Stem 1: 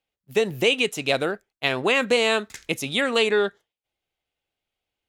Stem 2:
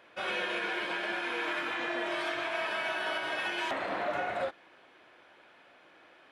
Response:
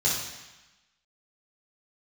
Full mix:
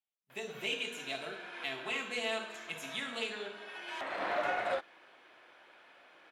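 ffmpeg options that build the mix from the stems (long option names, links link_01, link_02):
-filter_complex "[0:a]aecho=1:1:4.6:0.64,volume=-17dB,asplit=3[link_01][link_02][link_03];[link_02]volume=-12.5dB[link_04];[1:a]adelay=300,volume=1.5dB[link_05];[link_03]apad=whole_len=291844[link_06];[link_05][link_06]sidechaincompress=threshold=-56dB:ratio=4:attack=32:release=535[link_07];[2:a]atrim=start_sample=2205[link_08];[link_04][link_08]afir=irnorm=-1:irlink=0[link_09];[link_01][link_07][link_09]amix=inputs=3:normalize=0,lowshelf=frequency=290:gain=-9.5,aeval=exprs='0.1*(cos(1*acos(clip(val(0)/0.1,-1,1)))-cos(1*PI/2))+0.00224*(cos(7*acos(clip(val(0)/0.1,-1,1)))-cos(7*PI/2))':channel_layout=same"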